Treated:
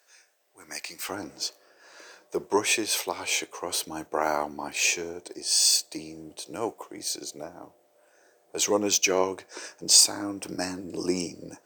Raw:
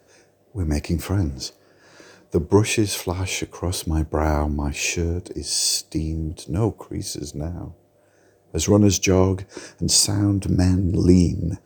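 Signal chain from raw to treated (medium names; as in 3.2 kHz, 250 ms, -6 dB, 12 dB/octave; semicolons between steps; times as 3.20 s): high-pass 1.3 kHz 12 dB/octave, from 1.09 s 570 Hz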